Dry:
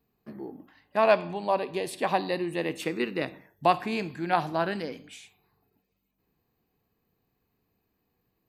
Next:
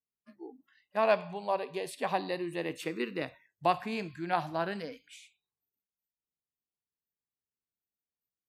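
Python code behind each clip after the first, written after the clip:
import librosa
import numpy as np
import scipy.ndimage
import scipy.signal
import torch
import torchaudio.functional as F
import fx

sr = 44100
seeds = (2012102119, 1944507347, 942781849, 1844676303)

y = fx.noise_reduce_blind(x, sr, reduce_db=25)
y = y * librosa.db_to_amplitude(-5.0)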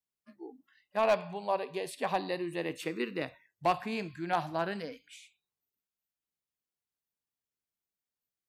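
y = np.clip(x, -10.0 ** (-19.5 / 20.0), 10.0 ** (-19.5 / 20.0))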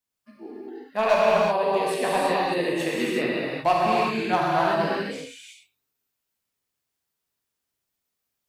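y = fx.rev_gated(x, sr, seeds[0], gate_ms=400, shape='flat', drr_db=-6.0)
y = y * librosa.db_to_amplitude(4.0)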